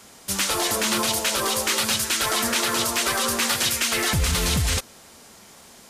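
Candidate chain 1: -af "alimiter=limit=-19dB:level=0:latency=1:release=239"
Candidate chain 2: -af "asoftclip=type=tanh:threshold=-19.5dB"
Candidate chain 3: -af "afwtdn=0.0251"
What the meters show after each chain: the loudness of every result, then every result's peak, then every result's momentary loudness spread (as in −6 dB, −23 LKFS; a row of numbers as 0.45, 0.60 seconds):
−28.0, −24.0, −22.0 LKFS; −19.0, −19.5, −9.0 dBFS; 19, 2, 2 LU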